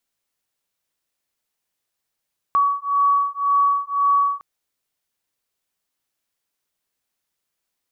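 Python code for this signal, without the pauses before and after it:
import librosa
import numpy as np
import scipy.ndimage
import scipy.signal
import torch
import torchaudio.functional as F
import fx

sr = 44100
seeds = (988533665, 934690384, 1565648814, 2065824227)

y = fx.two_tone_beats(sr, length_s=1.86, hz=1130.0, beat_hz=1.9, level_db=-19.0)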